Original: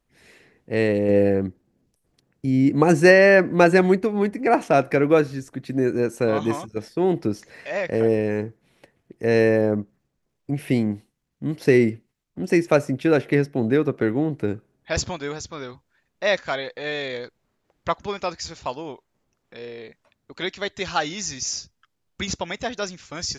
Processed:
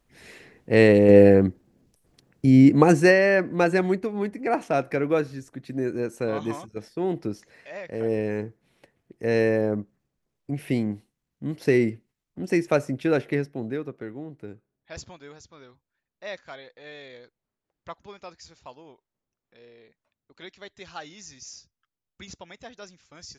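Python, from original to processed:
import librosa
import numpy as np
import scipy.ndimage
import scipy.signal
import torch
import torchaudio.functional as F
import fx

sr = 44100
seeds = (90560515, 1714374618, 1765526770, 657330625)

y = fx.gain(x, sr, db=fx.line((2.6, 5.0), (3.22, -6.0), (7.32, -6.0), (7.85, -12.0), (8.18, -4.0), (13.2, -4.0), (14.06, -15.0)))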